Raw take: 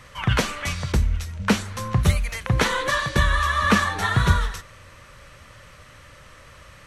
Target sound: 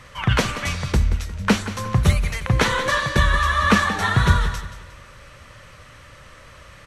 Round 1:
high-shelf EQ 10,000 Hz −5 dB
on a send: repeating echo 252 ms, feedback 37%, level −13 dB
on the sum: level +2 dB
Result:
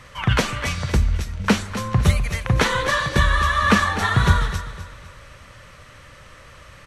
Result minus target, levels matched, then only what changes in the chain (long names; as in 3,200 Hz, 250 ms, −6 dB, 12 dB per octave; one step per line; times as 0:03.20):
echo 74 ms late
change: repeating echo 178 ms, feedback 37%, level −13 dB